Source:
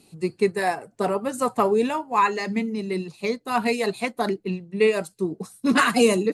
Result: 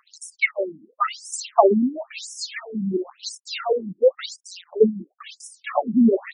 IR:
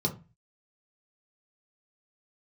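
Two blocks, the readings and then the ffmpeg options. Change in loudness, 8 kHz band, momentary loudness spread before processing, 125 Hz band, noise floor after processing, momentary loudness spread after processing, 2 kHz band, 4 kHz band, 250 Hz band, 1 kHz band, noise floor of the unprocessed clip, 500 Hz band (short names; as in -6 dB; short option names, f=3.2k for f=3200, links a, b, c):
+1.0 dB, +1.0 dB, 10 LU, -3.0 dB, -68 dBFS, 18 LU, -3.0 dB, -1.0 dB, +1.5 dB, -2.5 dB, -60 dBFS, +0.5 dB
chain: -af "acrusher=bits=7:dc=4:mix=0:aa=0.000001,aphaser=in_gain=1:out_gain=1:delay=2.4:decay=0.78:speed=0.64:type=triangular,afftfilt=real='re*between(b*sr/1024,220*pow(7500/220,0.5+0.5*sin(2*PI*0.96*pts/sr))/1.41,220*pow(7500/220,0.5+0.5*sin(2*PI*0.96*pts/sr))*1.41)':imag='im*between(b*sr/1024,220*pow(7500/220,0.5+0.5*sin(2*PI*0.96*pts/sr))/1.41,220*pow(7500/220,0.5+0.5*sin(2*PI*0.96*pts/sr))*1.41)':win_size=1024:overlap=0.75,volume=6.5dB"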